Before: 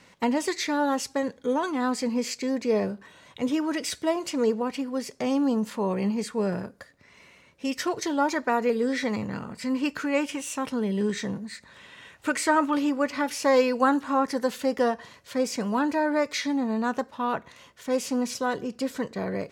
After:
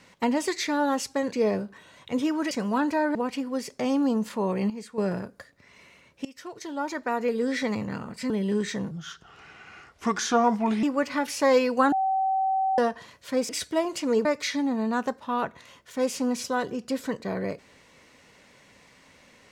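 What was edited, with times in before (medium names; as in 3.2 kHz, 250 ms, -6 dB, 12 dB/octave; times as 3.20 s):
1.32–2.61 s: delete
3.80–4.56 s: swap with 15.52–16.16 s
6.11–6.39 s: gain -9 dB
7.66–9.01 s: fade in, from -20.5 dB
9.71–10.79 s: delete
11.40–12.86 s: speed 76%
13.95–14.81 s: bleep 767 Hz -21.5 dBFS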